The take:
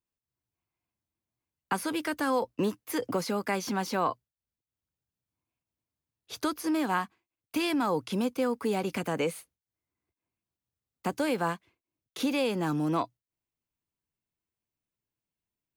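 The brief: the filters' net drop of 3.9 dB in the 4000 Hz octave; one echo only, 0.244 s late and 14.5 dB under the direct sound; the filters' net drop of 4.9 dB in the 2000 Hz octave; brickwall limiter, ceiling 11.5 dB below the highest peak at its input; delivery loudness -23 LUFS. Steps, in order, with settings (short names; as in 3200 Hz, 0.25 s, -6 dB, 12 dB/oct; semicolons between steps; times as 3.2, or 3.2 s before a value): bell 2000 Hz -6 dB; bell 4000 Hz -3 dB; limiter -28.5 dBFS; echo 0.244 s -14.5 dB; gain +14.5 dB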